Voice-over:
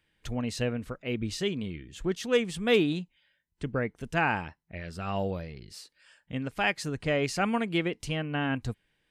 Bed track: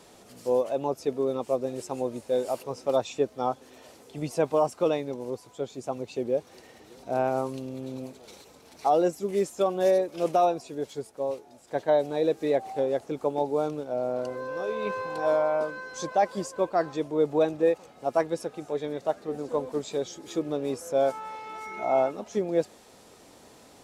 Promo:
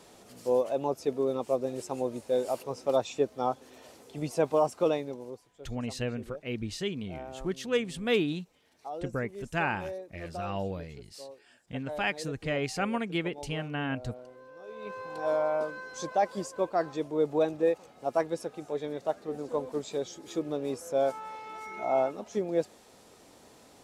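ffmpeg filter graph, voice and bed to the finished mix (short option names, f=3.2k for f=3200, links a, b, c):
-filter_complex "[0:a]adelay=5400,volume=-3dB[a];[1:a]volume=12dB,afade=t=out:st=4.9:d=0.6:silence=0.177828,afade=t=in:st=14.61:d=0.86:silence=0.211349[b];[a][b]amix=inputs=2:normalize=0"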